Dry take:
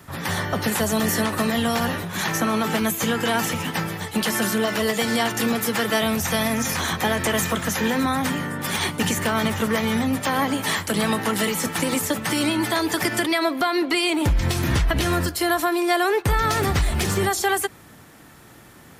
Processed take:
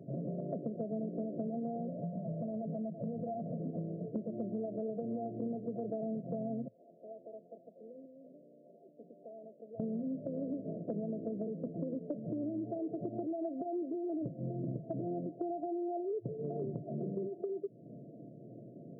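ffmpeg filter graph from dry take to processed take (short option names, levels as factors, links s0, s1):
-filter_complex "[0:a]asettb=1/sr,asplit=3[s0][s1][s2];[s0]atrim=end=1.894[s3];[s1]atrim=start=1.89:end=3.59,asetpts=PTS-STARTPTS,afade=t=in:d=0.004:c=qsin,afade=t=out:st=1.696:d=0.004:c=qsin,acompressor=threshold=0.0631:ratio=4:attack=3.2:release=140:knee=1:detection=peak,aecho=1:1:1.4:0.83,atrim=end_sample=74970,aeval=exprs='0.0891*(abs(mod(val(0)/0.0891+3,4)-2)-1)':c=same[s4];[s2]atrim=start=3.586[s5];[s3][s4]acrossfade=d=0.004:c1=hsin:c2=qsin[s6];[s6][s5]acrossfade=d=0.004:c1=qsin:c2=hsin,asettb=1/sr,asplit=3[s7][s8][s9];[s7]atrim=end=6.684[s10];[s8]atrim=start=6.68:end=9.8,asetpts=PTS-STARTPTS,afade=t=in:d=0.004:c=qsin,afade=t=out:st=3.116:d=0.004:c=qsin,bandpass=f=560:t=q:w=0.57,aderivative[s11];[s9]atrim=start=9.796[s12];[s10][s11]acrossfade=d=0.004:c1=hsin:c2=qsin[s13];[s13][s12]acrossfade=d=0.004:c1=qsin:c2=hsin,afftfilt=real='re*between(b*sr/4096,110,700)':imag='im*between(b*sr/4096,110,700)':win_size=4096:overlap=0.75,acompressor=threshold=0.0158:ratio=6"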